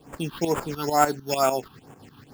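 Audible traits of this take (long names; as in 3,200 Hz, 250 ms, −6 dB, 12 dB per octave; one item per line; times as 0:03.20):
tremolo saw up 6.7 Hz, depth 75%
aliases and images of a low sample rate 6,000 Hz, jitter 0%
phaser sweep stages 6, 2.2 Hz, lowest notch 540–4,300 Hz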